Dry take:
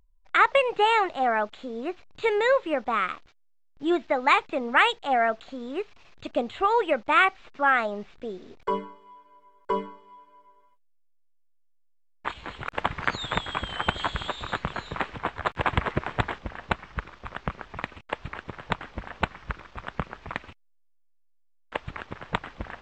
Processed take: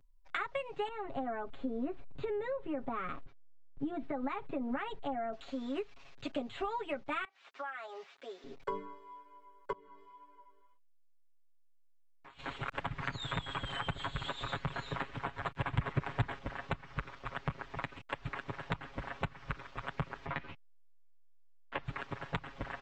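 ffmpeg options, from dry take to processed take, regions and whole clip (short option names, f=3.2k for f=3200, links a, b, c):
-filter_complex "[0:a]asettb=1/sr,asplit=3[a][b][c];[a]atrim=end=0.884[d];[b]atrim=start=0.88:end=5.33,asetpts=PTS-STARTPTS,afade=t=in:d=0.004:c=qsin,afade=t=out:st=4.446:d=0.004:c=qsin,lowpass=f=1.1k:p=1,lowshelf=f=320:g=10,acompressor=threshold=-28dB:ratio=2.5:attack=3.2:release=140:knee=1:detection=peak[e];[c]atrim=start=5.326[f];[d][e]acrossfade=d=0.004:c1=hsin:c2=qsin[g];[g][f]acrossfade=d=0.004:c1=qsin:c2=hsin,asettb=1/sr,asplit=3[h][i][j];[h]atrim=end=7.244[k];[i]atrim=start=7.24:end=8.44,asetpts=PTS-STARTPTS,afade=t=in:d=0.004:c=qsin,afade=t=out:st=1.196:d=0.004:c=qsin,highpass=670,acompressor=threshold=-35dB:ratio=16:attack=3.2:release=140:knee=1:detection=peak[l];[j]atrim=start=8.436[m];[k][l]acrossfade=d=0.004:c1=hsin:c2=qsin[n];[n][m]acrossfade=d=0.004:c1=qsin:c2=hsin,asettb=1/sr,asplit=3[o][p][q];[o]atrim=end=9.724[r];[p]atrim=start=9.72:end=12.39,asetpts=PTS-STARTPTS,afade=t=in:d=0.004:c=qsin,afade=t=out:st=2.666:d=0.004:c=qsin,acompressor=threshold=-47dB:ratio=5:attack=3.2:release=140:knee=1:detection=peak,flanger=delay=17:depth=2.8:speed=1.8[s];[q]atrim=start=12.386[t];[r][s]acrossfade=d=0.004:c1=hsin:c2=qsin[u];[u][t]acrossfade=d=0.004:c1=qsin:c2=hsin,asettb=1/sr,asplit=3[v][w][x];[v]atrim=end=20.264[y];[w]atrim=start=20.26:end=21.84,asetpts=PTS-STARTPTS,afade=t=in:d=0.004:c=qsin,afade=t=out:st=1.576:d=0.004:c=qsin,lowpass=3.9k,asplit=2[z][aa];[aa]adelay=13,volume=-2dB[ab];[z][ab]amix=inputs=2:normalize=0,atrim=end_sample=69678[ac];[x]atrim=start=21.836[ad];[y][ac]acrossfade=d=0.004:c1=hsin:c2=qsin[ae];[ae][ad]acrossfade=d=0.004:c1=qsin:c2=hsin,aecho=1:1:7.3:1,acrossover=split=190[af][ag];[ag]acompressor=threshold=-29dB:ratio=10[ah];[af][ah]amix=inputs=2:normalize=0,volume=-5.5dB"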